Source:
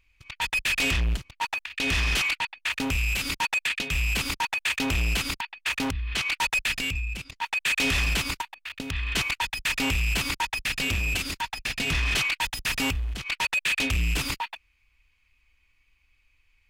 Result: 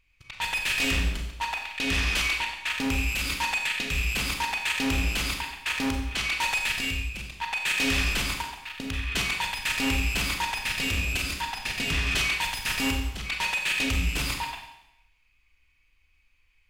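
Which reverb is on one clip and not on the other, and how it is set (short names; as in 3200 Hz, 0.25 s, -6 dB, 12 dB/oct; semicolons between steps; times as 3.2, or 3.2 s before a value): Schroeder reverb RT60 0.85 s, combs from 30 ms, DRR 2.5 dB; gain -2 dB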